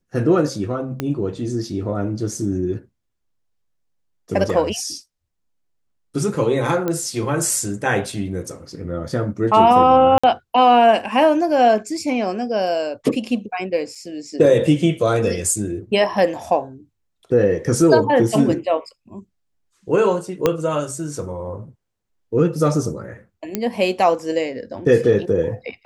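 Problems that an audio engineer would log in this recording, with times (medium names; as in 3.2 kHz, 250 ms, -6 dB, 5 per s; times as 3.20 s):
1.00 s: pop -9 dBFS
6.88 s: pop -10 dBFS
10.18–10.23 s: dropout 55 ms
13.95 s: dropout 4.6 ms
20.46 s: pop -3 dBFS
23.55 s: pop -7 dBFS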